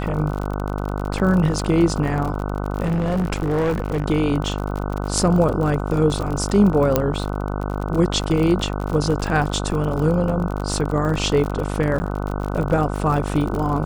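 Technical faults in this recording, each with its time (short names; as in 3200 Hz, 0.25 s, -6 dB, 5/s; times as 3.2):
buzz 50 Hz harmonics 30 -25 dBFS
crackle 49/s -25 dBFS
2.84–4.06 clipped -17 dBFS
6.96 pop -3 dBFS
11.99–12 gap 10 ms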